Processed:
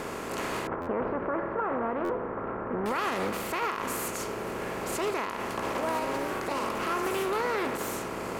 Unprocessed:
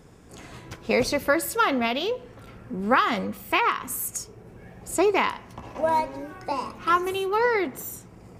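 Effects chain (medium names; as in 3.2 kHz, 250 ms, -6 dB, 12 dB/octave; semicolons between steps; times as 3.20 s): spectral levelling over time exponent 0.4; 0.67–2.86 s: low-pass 1.5 kHz 24 dB/octave; peak limiter -11.5 dBFS, peak gain reduction 9.5 dB; buffer glitch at 0.81/2.04 s, samples 512, times 4; loudspeaker Doppler distortion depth 0.23 ms; trim -9 dB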